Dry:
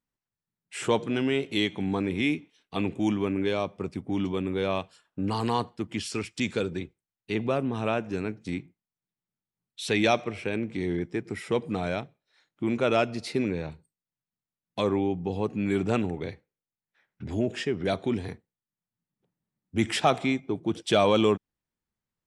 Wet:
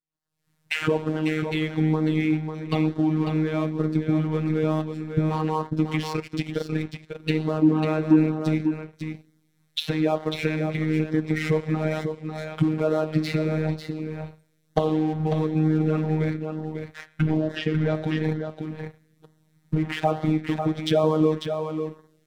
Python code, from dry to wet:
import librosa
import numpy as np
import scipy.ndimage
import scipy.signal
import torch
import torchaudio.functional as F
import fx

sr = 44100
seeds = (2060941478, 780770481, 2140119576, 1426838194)

y = fx.recorder_agc(x, sr, target_db=-16.5, rise_db_per_s=60.0, max_gain_db=30)
y = fx.env_lowpass_down(y, sr, base_hz=1200.0, full_db=-19.0)
y = fx.high_shelf(y, sr, hz=3700.0, db=-3.0)
y = fx.rev_double_slope(y, sr, seeds[0], early_s=0.96, late_s=3.4, knee_db=-27, drr_db=11.0)
y = fx.leveller(y, sr, passes=2)
y = fx.level_steps(y, sr, step_db=17, at=(6.1, 6.72))
y = fx.peak_eq(y, sr, hz=290.0, db=14.5, octaves=0.49, at=(7.62, 8.19))
y = fx.lowpass(y, sr, hz=5600.0, slope=12, at=(17.37, 17.93), fade=0.02)
y = fx.robotise(y, sr, hz=156.0)
y = 10.0 ** (-3.0 / 20.0) * np.tanh(y / 10.0 ** (-3.0 / 20.0))
y = y + 10.0 ** (-7.0 / 20.0) * np.pad(y, (int(546 * sr / 1000.0), 0))[:len(y)]
y = fx.filter_lfo_notch(y, sr, shape='sine', hz=1.1, low_hz=250.0, high_hz=2500.0, q=2.7)
y = y * 10.0 ** (-3.5 / 20.0)